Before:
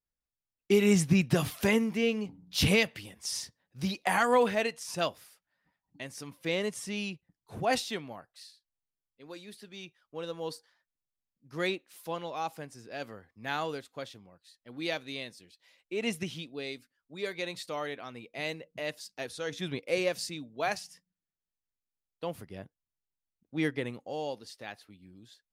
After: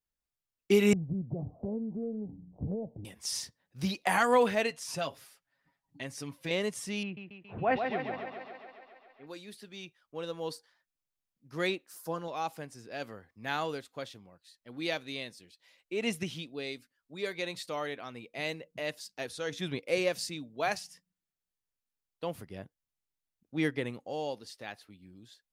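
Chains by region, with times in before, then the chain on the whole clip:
0:00.93–0:03.05: Butterworth low-pass 800 Hz 48 dB per octave + spectral tilt −2 dB per octave + downward compressor 2.5 to 1, threshold −38 dBFS
0:04.70–0:06.51: high-shelf EQ 12,000 Hz −4.5 dB + comb filter 7.3 ms, depth 58% + downward compressor 2 to 1, threshold −33 dBFS
0:07.03–0:09.27: low-pass filter 2,400 Hz 24 dB per octave + feedback echo with a high-pass in the loop 138 ms, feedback 72%, high-pass 190 Hz, level −5 dB
0:11.87–0:12.28: flat-topped bell 2,800 Hz −12 dB 1.2 octaves + comb filter 6.5 ms, depth 41% + one half of a high-frequency compander encoder only
whole clip: no processing

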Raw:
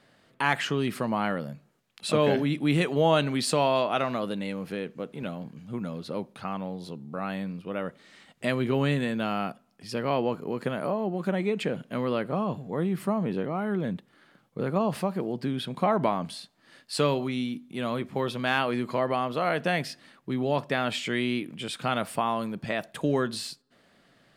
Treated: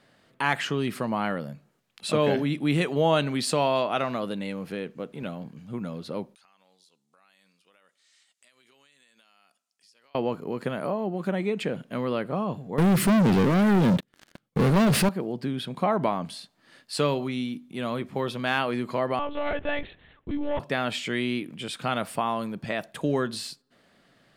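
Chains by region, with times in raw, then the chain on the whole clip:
0:06.35–0:10.15: resonant band-pass 7,300 Hz, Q 1.3 + downward compressor 12 to 1, threshold −56 dBFS
0:12.78–0:15.09: parametric band 880 Hz −8.5 dB 1.3 octaves + leveller curve on the samples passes 5
0:19.19–0:20.60: notch filter 1,300 Hz, Q 6.6 + hard clipping −21 dBFS + one-pitch LPC vocoder at 8 kHz 290 Hz
whole clip: no processing

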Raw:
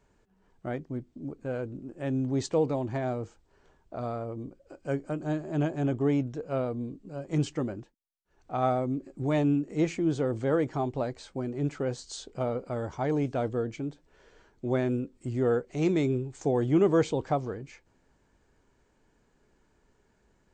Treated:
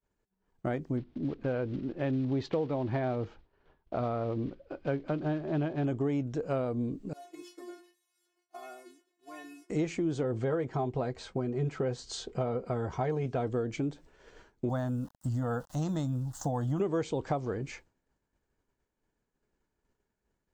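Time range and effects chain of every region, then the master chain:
0:00.97–0:05.85: one scale factor per block 5 bits + low-pass filter 4,000 Hz 24 dB per octave
0:07.13–0:09.70: linear delta modulator 64 kbit/s, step −41 dBFS + high-pass filter 270 Hz 24 dB per octave + stiff-string resonator 350 Hz, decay 0.47 s, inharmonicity 0.002
0:10.23–0:13.47: high-shelf EQ 6,700 Hz −12 dB + notch comb filter 290 Hz
0:14.69–0:16.80: centre clipping without the shift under −52.5 dBFS + phaser with its sweep stopped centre 960 Hz, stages 4
whole clip: downward expander −53 dBFS; downward compressor 5 to 1, threshold −35 dBFS; level +6.5 dB

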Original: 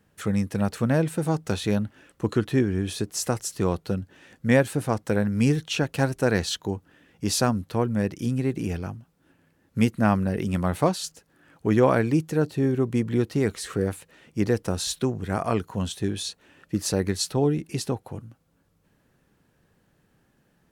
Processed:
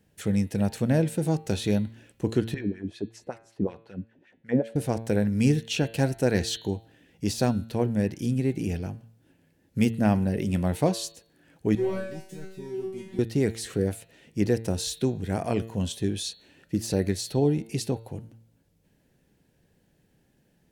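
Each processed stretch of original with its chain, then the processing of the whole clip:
0:02.54–0:04.76: auto-filter band-pass sine 5.3 Hz 220–2,200 Hz + low-shelf EQ 180 Hz +10 dB
0:11.75–0:13.19: high-pass filter 73 Hz 24 dB per octave + leveller curve on the samples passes 2 + tuned comb filter 190 Hz, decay 0.53 s, mix 100%
whole clip: parametric band 1,200 Hz −12.5 dB 0.69 octaves; hum removal 113.2 Hz, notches 39; de-essing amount 55%

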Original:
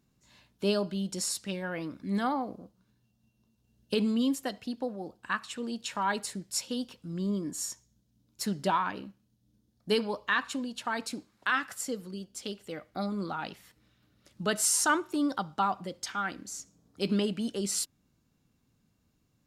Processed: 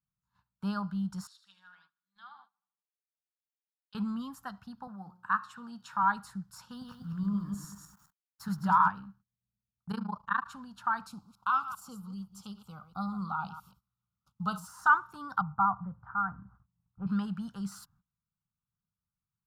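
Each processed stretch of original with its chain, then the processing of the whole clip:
0:01.27–0:03.95: resonant band-pass 3,500 Hz, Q 4.5 + repeating echo 77 ms, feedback 54%, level −9 dB
0:04.87–0:06.03: high-pass filter 130 Hz + hum removal 180 Hz, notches 30
0:06.71–0:08.88: feedback delay that plays each chunk backwards 104 ms, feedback 47%, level −3.5 dB + centre clipping without the shift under −52 dBFS
0:09.91–0:10.48: parametric band 260 Hz +7.5 dB 2 octaves + amplitude modulation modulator 27 Hz, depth 95%
0:11.09–0:14.68: delay that plays each chunk backwards 132 ms, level −12.5 dB + Butterworth band-reject 1,800 Hz, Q 1.5 + high-shelf EQ 2,900 Hz +4.5 dB
0:15.41–0:17.07: low-pass filter 1,300 Hz 24 dB per octave + low shelf with overshoot 170 Hz +6.5 dB, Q 1.5
whole clip: de-essing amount 60%; noise gate −57 dBFS, range −21 dB; drawn EQ curve 190 Hz 0 dB, 320 Hz −26 dB, 580 Hz −22 dB, 840 Hz 0 dB, 1,400 Hz +6 dB, 2,100 Hz −19 dB, 4,900 Hz −14 dB, 8,400 Hz −18 dB, 14,000 Hz −9 dB; level +1.5 dB

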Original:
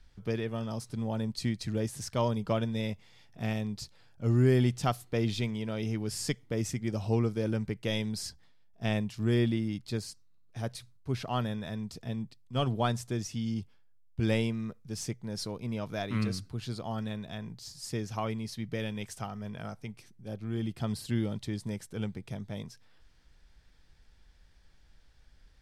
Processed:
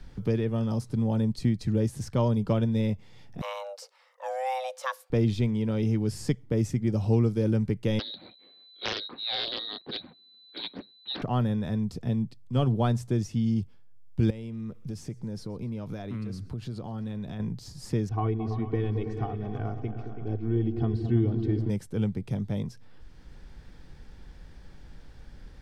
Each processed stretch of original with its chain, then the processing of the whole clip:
0:03.41–0:05.10: high-pass filter 740 Hz 6 dB per octave + frequency shifter +390 Hz
0:07.99–0:11.22: voice inversion scrambler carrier 4,000 Hz + high-pass with resonance 250 Hz, resonance Q 1.8 + highs frequency-modulated by the lows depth 0.35 ms
0:14.30–0:17.40: downward compressor 5 to 1, threshold −43 dBFS + feedback echo with a high-pass in the loop 125 ms, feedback 51%, high-pass 530 Hz, level −22.5 dB
0:18.09–0:21.70: head-to-tape spacing loss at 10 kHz 36 dB + comb filter 2.7 ms, depth 86% + echo whose low-pass opens from repeat to repeat 110 ms, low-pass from 200 Hz, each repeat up 2 octaves, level −6 dB
whole clip: tilt shelving filter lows +6 dB, about 820 Hz; notch filter 650 Hz, Q 12; multiband upward and downward compressor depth 40%; level +2 dB

